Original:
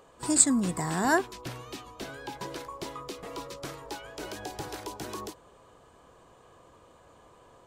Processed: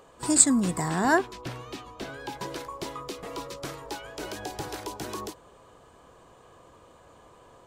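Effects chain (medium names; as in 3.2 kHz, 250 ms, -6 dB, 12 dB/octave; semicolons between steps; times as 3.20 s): 0.88–2.20 s: treble shelf 6.7 kHz -8.5 dB; trim +2.5 dB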